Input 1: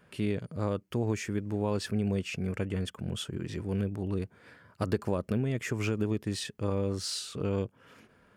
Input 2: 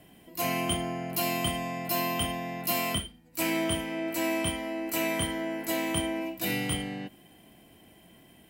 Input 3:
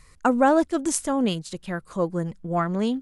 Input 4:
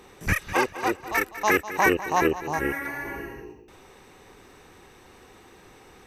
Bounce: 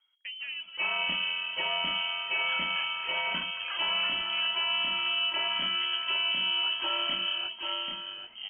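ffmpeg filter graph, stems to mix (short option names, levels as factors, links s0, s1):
-filter_complex "[0:a]adelay=1000,volume=0.376,asplit=2[s0][s1];[s1]volume=0.422[s2];[1:a]highpass=140,aecho=1:1:3:0.68,adelay=400,volume=0.891,asplit=2[s3][s4];[s4]volume=0.531[s5];[2:a]highshelf=f=2700:g=-10.5,volume=0.106,asplit=2[s6][s7];[3:a]adelay=2200,volume=0.126[s8];[s7]apad=whole_len=412814[s9];[s0][s9]sidechaincompress=threshold=0.002:ratio=8:attack=16:release=390[s10];[s2][s5]amix=inputs=2:normalize=0,aecho=0:1:787:1[s11];[s10][s3][s6][s8][s11]amix=inputs=5:normalize=0,bandreject=f=88.61:t=h:w=4,bandreject=f=177.22:t=h:w=4,bandreject=f=265.83:t=h:w=4,bandreject=f=354.44:t=h:w=4,bandreject=f=443.05:t=h:w=4,bandreject=f=531.66:t=h:w=4,bandreject=f=620.27:t=h:w=4,bandreject=f=708.88:t=h:w=4,bandreject=f=797.49:t=h:w=4,bandreject=f=886.1:t=h:w=4,bandreject=f=974.71:t=h:w=4,bandreject=f=1063.32:t=h:w=4,bandreject=f=1151.93:t=h:w=4,bandreject=f=1240.54:t=h:w=4,lowpass=f=2800:t=q:w=0.5098,lowpass=f=2800:t=q:w=0.6013,lowpass=f=2800:t=q:w=0.9,lowpass=f=2800:t=q:w=2.563,afreqshift=-3300,alimiter=limit=0.0944:level=0:latency=1:release=66"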